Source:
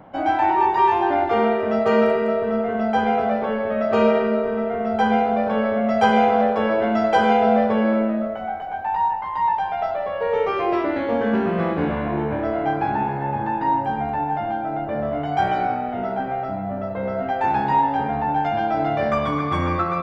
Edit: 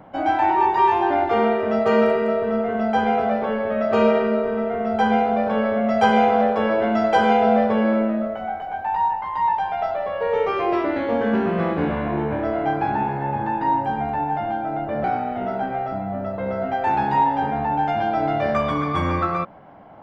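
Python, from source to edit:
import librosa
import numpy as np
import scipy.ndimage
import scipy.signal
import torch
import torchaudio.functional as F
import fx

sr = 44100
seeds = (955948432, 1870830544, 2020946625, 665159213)

y = fx.edit(x, sr, fx.cut(start_s=15.04, length_s=0.57), tone=tone)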